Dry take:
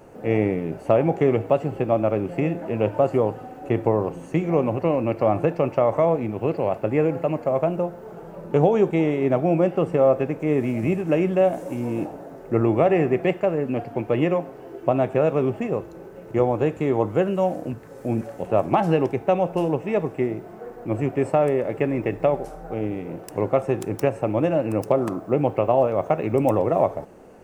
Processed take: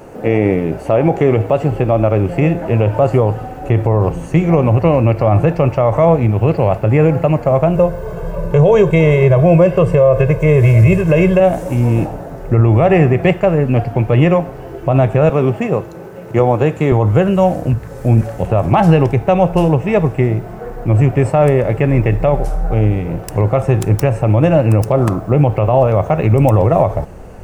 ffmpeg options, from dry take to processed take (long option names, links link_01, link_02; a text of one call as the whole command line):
ffmpeg -i in.wav -filter_complex "[0:a]asettb=1/sr,asplit=3[link_01][link_02][link_03];[link_01]atrim=end=7.754[link_04];[link_02]atrim=start=7.75:end=11.4,asetpts=PTS-STARTPTS,afade=type=in:duration=0.004:curve=qsin,afade=type=out:start_time=3.646:duration=0.004:curve=qsin,aecho=1:1:1.9:0.95,atrim=end_sample=160965[link_05];[link_03]atrim=start=11.396[link_06];[link_04][link_05]acrossfade=duration=0.004:curve1=hsin:curve2=qsin[link_07];[link_07][link_06]acrossfade=duration=0.004:curve1=qsin:curve2=hsin,asettb=1/sr,asplit=3[link_08][link_09][link_10];[link_08]atrim=end=15.294[link_11];[link_09]atrim=start=15.29:end=16.92,asetpts=PTS-STARTPTS,afade=type=in:duration=0.004:curve=qsin,afade=type=out:start_time=1.626:duration=0.004:curve=qsin,highpass=170[link_12];[link_10]atrim=start=16.916[link_13];[link_11][link_12]acrossfade=duration=0.004:curve1=hsin:curve2=qsin[link_14];[link_14][link_13]acrossfade=duration=0.004:curve1=qsin:curve2=hsin,asubboost=boost=7.5:cutoff=100,alimiter=level_in=12dB:limit=-1dB:release=50:level=0:latency=1,volume=-1dB" out.wav